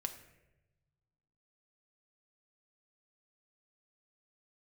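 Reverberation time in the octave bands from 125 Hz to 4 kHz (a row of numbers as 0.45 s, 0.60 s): 2.1 s, 1.5 s, 1.2 s, 0.80 s, 0.90 s, 0.60 s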